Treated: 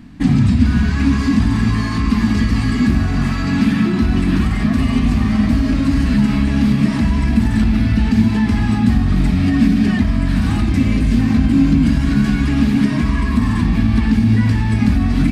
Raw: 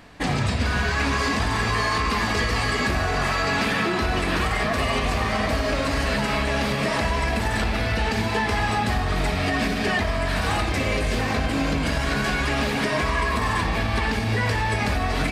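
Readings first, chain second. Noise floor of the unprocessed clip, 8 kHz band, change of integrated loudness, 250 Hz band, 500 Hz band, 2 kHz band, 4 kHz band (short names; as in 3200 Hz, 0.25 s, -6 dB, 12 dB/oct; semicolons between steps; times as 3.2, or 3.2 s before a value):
-25 dBFS, n/a, +7.5 dB, +14.5 dB, -5.5 dB, -3.5 dB, -3.0 dB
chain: resonant low shelf 350 Hz +12 dB, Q 3; gain -3 dB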